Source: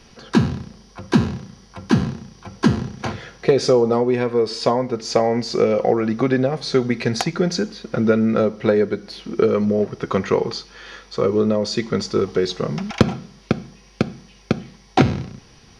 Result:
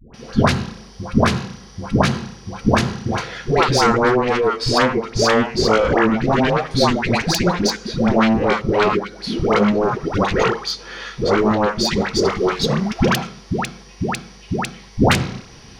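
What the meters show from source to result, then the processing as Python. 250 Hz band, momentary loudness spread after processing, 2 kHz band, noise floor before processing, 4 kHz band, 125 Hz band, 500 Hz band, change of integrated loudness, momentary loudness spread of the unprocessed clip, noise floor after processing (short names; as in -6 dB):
+1.0 dB, 11 LU, +8.5 dB, -49 dBFS, +6.5 dB, +2.5 dB, +0.5 dB, +2.0 dB, 12 LU, -43 dBFS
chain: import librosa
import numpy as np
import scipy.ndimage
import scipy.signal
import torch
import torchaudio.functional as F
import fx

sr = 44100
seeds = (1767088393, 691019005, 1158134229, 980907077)

y = fx.cheby_harmonics(x, sr, harmonics=(3, 4, 7), levels_db=(-20, -15, -7), full_scale_db=-1.0)
y = fx.dispersion(y, sr, late='highs', ms=142.0, hz=650.0)
y = y * librosa.db_to_amplitude(-1.0)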